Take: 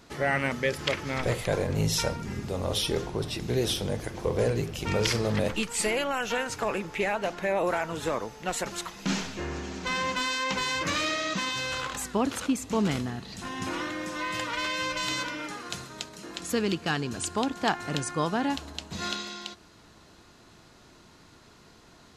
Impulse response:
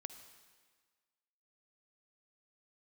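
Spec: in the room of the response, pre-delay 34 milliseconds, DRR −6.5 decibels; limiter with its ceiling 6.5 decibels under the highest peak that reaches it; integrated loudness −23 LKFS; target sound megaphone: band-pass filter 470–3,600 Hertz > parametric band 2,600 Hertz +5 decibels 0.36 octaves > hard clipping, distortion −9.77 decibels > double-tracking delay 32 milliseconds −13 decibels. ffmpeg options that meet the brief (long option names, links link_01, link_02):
-filter_complex "[0:a]alimiter=limit=-19dB:level=0:latency=1,asplit=2[link_01][link_02];[1:a]atrim=start_sample=2205,adelay=34[link_03];[link_02][link_03]afir=irnorm=-1:irlink=0,volume=10.5dB[link_04];[link_01][link_04]amix=inputs=2:normalize=0,highpass=470,lowpass=3600,equalizer=frequency=2600:width_type=o:width=0.36:gain=5,asoftclip=type=hard:threshold=-23dB,asplit=2[link_05][link_06];[link_06]adelay=32,volume=-13dB[link_07];[link_05][link_07]amix=inputs=2:normalize=0,volume=4.5dB"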